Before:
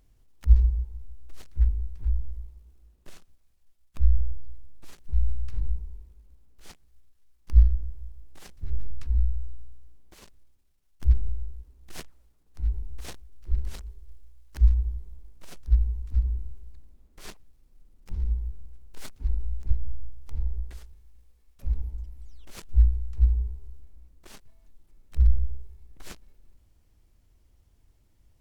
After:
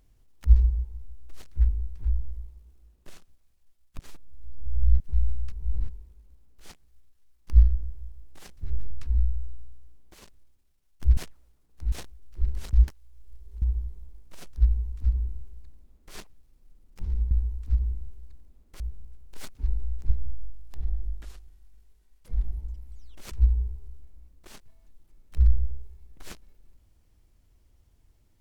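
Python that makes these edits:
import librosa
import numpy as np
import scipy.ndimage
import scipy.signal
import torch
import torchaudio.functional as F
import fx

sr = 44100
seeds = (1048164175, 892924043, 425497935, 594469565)

y = fx.edit(x, sr, fx.reverse_span(start_s=3.99, length_s=1.01),
    fx.reverse_span(start_s=5.52, length_s=0.37),
    fx.cut(start_s=11.17, length_s=0.77),
    fx.cut(start_s=12.69, length_s=0.33),
    fx.reverse_span(start_s=13.83, length_s=0.89),
    fx.duplicate(start_s=15.75, length_s=1.49, to_s=18.41),
    fx.speed_span(start_s=19.95, length_s=1.92, speed=0.86),
    fx.cut(start_s=22.61, length_s=0.5), tone=tone)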